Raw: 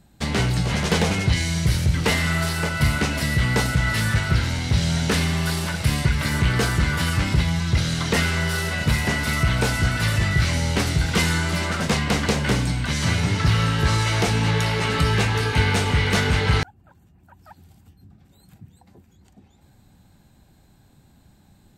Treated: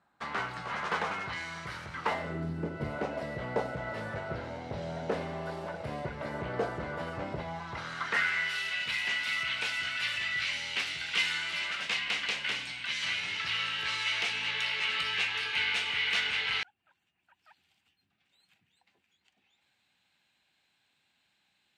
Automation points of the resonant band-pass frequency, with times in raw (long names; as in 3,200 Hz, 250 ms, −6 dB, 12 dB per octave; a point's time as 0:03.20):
resonant band-pass, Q 2.3
0:02.03 1,200 Hz
0:02.51 220 Hz
0:02.98 600 Hz
0:07.34 600 Hz
0:08.60 2,700 Hz